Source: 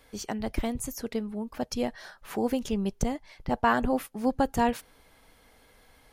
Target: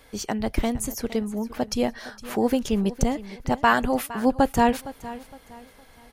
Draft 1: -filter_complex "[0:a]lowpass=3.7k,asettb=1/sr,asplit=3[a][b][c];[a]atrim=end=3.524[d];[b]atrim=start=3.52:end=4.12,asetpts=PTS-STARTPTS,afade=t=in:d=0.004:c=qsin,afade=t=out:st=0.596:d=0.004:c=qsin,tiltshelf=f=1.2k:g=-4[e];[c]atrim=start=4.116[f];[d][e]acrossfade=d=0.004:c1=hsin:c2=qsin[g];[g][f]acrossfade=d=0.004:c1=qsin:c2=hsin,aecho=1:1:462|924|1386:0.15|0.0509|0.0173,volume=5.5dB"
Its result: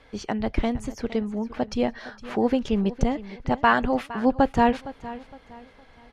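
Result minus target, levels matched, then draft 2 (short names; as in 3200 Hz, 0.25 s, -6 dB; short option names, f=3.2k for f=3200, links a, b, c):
4000 Hz band -3.0 dB
-filter_complex "[0:a]asettb=1/sr,asplit=3[a][b][c];[a]atrim=end=3.524[d];[b]atrim=start=3.52:end=4.12,asetpts=PTS-STARTPTS,afade=t=in:d=0.004:c=qsin,afade=t=out:st=0.596:d=0.004:c=qsin,tiltshelf=f=1.2k:g=-4[e];[c]atrim=start=4.116[f];[d][e]acrossfade=d=0.004:c1=hsin:c2=qsin[g];[g][f]acrossfade=d=0.004:c1=qsin:c2=hsin,aecho=1:1:462|924|1386:0.15|0.0509|0.0173,volume=5.5dB"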